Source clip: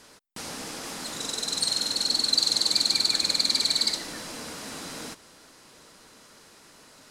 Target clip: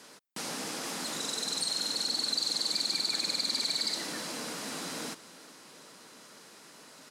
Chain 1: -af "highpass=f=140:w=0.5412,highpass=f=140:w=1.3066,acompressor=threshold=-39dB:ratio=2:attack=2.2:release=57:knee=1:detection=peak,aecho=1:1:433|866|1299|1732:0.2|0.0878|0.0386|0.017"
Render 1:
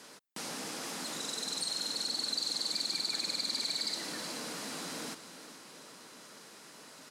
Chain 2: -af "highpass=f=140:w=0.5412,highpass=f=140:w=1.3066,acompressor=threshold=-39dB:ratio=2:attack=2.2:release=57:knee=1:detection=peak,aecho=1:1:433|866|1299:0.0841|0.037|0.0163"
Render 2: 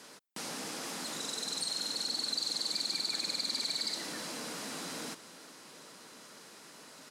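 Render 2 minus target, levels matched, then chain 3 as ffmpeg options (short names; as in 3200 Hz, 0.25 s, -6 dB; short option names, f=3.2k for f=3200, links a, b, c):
compressor: peak gain reduction +3.5 dB
-af "highpass=f=140:w=0.5412,highpass=f=140:w=1.3066,acompressor=threshold=-32dB:ratio=2:attack=2.2:release=57:knee=1:detection=peak,aecho=1:1:433|866|1299:0.0841|0.037|0.0163"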